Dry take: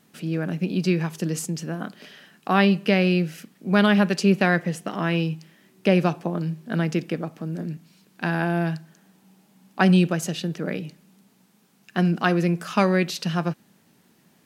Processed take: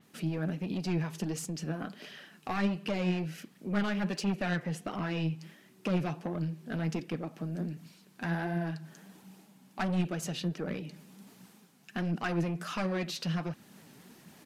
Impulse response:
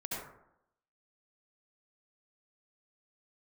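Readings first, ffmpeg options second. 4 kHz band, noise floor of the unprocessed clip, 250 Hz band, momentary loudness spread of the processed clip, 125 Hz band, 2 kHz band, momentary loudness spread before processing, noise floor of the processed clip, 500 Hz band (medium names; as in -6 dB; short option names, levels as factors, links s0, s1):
-10.0 dB, -61 dBFS, -10.5 dB, 16 LU, -9.0 dB, -12.0 dB, 14 LU, -61 dBFS, -12.5 dB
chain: -filter_complex "[0:a]asplit=2[s0][s1];[s1]acompressor=threshold=0.0282:ratio=6,volume=1.06[s2];[s0][s2]amix=inputs=2:normalize=0,aresample=32000,aresample=44100,asoftclip=type=tanh:threshold=0.133,areverse,acompressor=mode=upward:threshold=0.0141:ratio=2.5,areverse,flanger=delay=0.3:depth=8:regen=46:speed=1.4:shape=triangular,adynamicequalizer=threshold=0.00316:dfrequency=5500:dqfactor=0.7:tfrequency=5500:tqfactor=0.7:attack=5:release=100:ratio=0.375:range=2:mode=cutabove:tftype=highshelf,volume=0.596"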